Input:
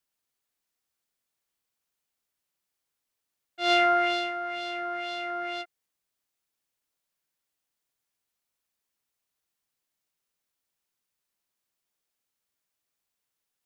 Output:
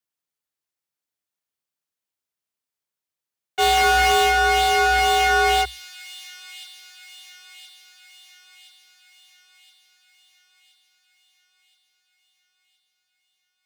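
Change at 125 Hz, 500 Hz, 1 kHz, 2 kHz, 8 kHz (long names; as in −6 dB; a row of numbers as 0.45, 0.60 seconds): can't be measured, +6.5 dB, +11.5 dB, +12.0 dB, +23.0 dB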